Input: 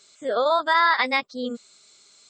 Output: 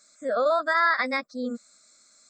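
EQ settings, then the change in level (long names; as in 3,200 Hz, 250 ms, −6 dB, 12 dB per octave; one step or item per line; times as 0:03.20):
phaser with its sweep stopped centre 600 Hz, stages 8
0.0 dB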